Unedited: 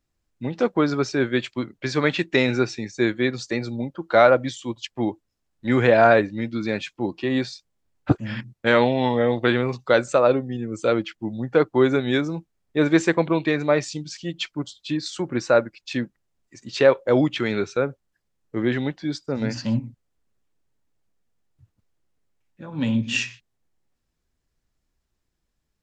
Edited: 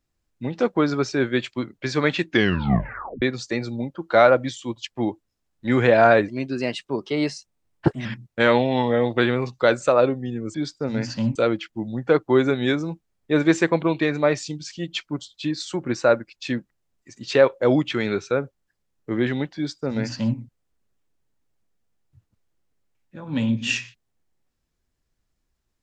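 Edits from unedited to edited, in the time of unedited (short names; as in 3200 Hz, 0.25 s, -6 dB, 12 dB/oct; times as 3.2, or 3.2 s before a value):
2.25 tape stop 0.97 s
6.28–8.32 speed 115%
19.02–19.83 copy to 10.81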